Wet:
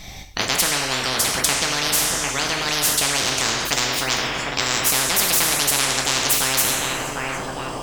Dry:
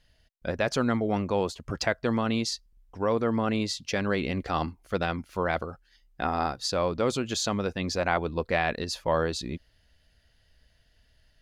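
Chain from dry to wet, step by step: gliding tape speed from 121% -> 171%; on a send: filtered feedback delay 751 ms, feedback 72%, low-pass 850 Hz, level -13 dB; on the sum: two-slope reverb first 0.49 s, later 1.9 s, from -18 dB, DRR 1 dB; spectrum-flattening compressor 10:1; trim +8 dB

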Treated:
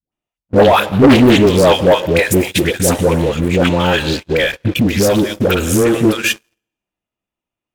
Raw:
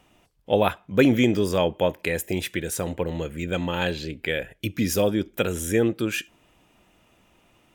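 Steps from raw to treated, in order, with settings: phase dispersion highs, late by 124 ms, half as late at 590 Hz; dynamic bell 2.1 kHz, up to -4 dB, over -42 dBFS, Q 3.6; plate-style reverb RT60 1.2 s, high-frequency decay 0.95×, pre-delay 100 ms, DRR 16 dB; waveshaping leveller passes 3; gate -23 dBFS, range -24 dB; 3.72–5.94 s: compression, threshold -13 dBFS, peak gain reduction 4.5 dB; loudspeaker Doppler distortion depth 0.35 ms; trim +3.5 dB

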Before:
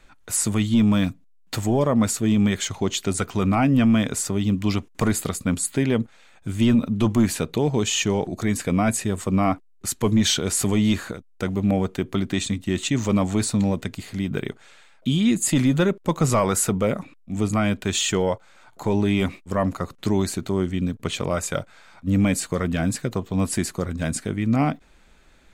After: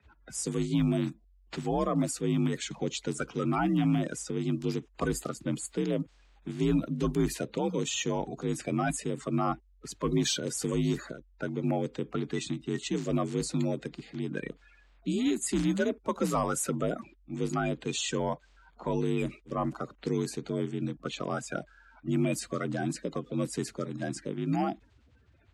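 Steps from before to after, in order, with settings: coarse spectral quantiser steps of 30 dB; level-controlled noise filter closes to 2.8 kHz, open at -16 dBFS; frequency shift +46 Hz; trim -8 dB

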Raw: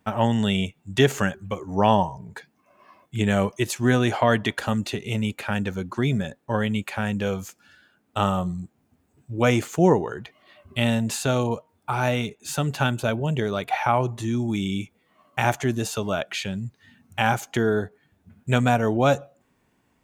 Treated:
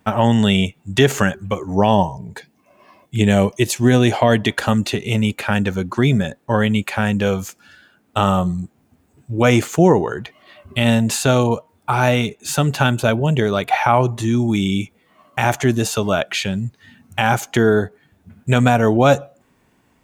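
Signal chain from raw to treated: 1.73–4.51 s: peaking EQ 1.3 kHz -7.5 dB 0.86 oct; loudness maximiser +8.5 dB; trim -1 dB

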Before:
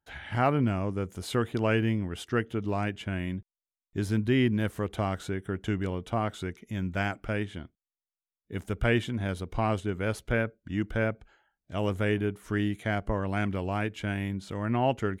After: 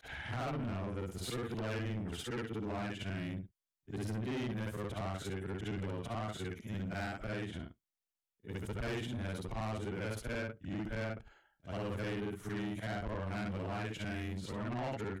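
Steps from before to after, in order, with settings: short-time spectra conjugated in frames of 147 ms; compression 1.5:1, threshold -38 dBFS, peak gain reduction 5.5 dB; saturation -37 dBFS, distortion -9 dB; trim +2.5 dB

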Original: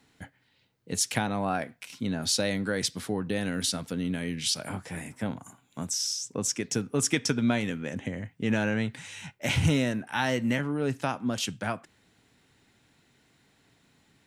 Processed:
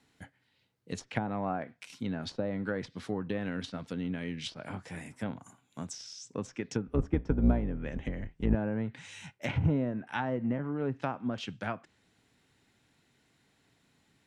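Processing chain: 6.87–8.55 s: octave divider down 2 oct, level +2 dB; Chebyshev shaper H 4 -18 dB, 6 -25 dB, 7 -28 dB, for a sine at -9 dBFS; low-pass that closes with the level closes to 870 Hz, closed at -24 dBFS; trim -2 dB

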